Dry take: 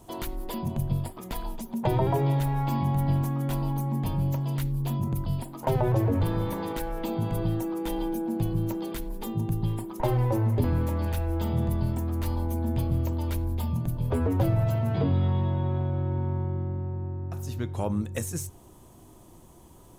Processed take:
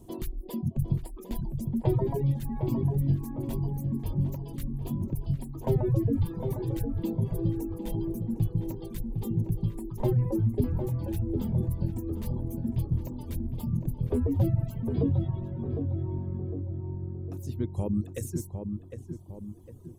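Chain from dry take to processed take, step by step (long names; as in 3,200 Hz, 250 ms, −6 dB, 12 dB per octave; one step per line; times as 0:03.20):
reverb reduction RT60 0.93 s
notch filter 1,400 Hz, Q 11
reverb reduction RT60 1.9 s
drawn EQ curve 390 Hz 0 dB, 630 Hz −10 dB, 1,500 Hz −14 dB, 11,000 Hz −7 dB
feedback echo with a low-pass in the loop 756 ms, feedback 48%, low-pass 1,400 Hz, level −6 dB
level +2.5 dB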